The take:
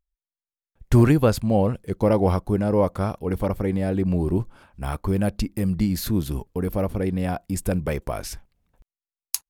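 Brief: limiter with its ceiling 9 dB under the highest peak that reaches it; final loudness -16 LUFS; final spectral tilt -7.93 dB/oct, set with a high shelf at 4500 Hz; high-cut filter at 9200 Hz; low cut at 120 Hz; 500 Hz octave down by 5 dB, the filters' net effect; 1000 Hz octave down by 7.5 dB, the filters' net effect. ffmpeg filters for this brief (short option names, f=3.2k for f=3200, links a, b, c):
-af "highpass=120,lowpass=9.2k,equalizer=f=500:t=o:g=-4,equalizer=f=1k:t=o:g=-8.5,highshelf=f=4.5k:g=-5.5,volume=12.5dB,alimiter=limit=-5dB:level=0:latency=1"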